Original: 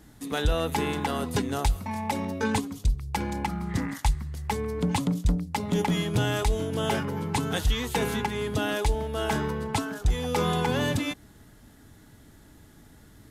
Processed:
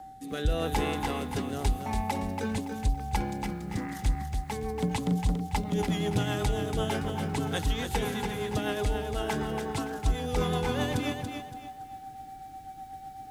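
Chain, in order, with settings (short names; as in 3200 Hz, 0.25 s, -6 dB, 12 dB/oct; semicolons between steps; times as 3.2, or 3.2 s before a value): whine 770 Hz -37 dBFS; rotary speaker horn 0.9 Hz, later 8 Hz, at 3.69; lo-fi delay 0.283 s, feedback 35%, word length 9-bit, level -6 dB; gain -2 dB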